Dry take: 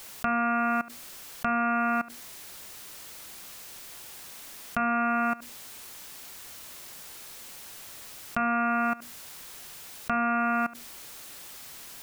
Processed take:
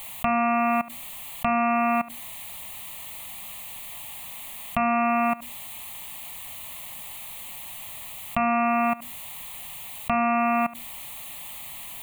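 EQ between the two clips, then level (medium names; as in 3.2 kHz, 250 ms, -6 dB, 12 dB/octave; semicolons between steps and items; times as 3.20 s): static phaser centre 1.5 kHz, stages 6; +8.0 dB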